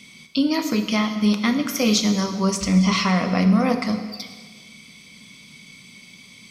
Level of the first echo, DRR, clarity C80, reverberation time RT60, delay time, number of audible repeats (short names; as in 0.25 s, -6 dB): none, 6.5 dB, 9.5 dB, 1.5 s, none, none